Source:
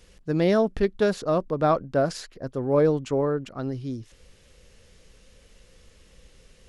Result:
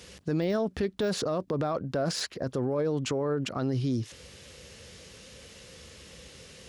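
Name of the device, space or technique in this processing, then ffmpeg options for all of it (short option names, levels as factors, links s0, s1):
broadcast voice chain: -af "highpass=f=70:w=0.5412,highpass=f=70:w=1.3066,deesser=0.9,acompressor=threshold=0.0501:ratio=4,equalizer=f=4600:t=o:w=1.7:g=3.5,alimiter=level_in=1.58:limit=0.0631:level=0:latency=1:release=29,volume=0.631,volume=2.37"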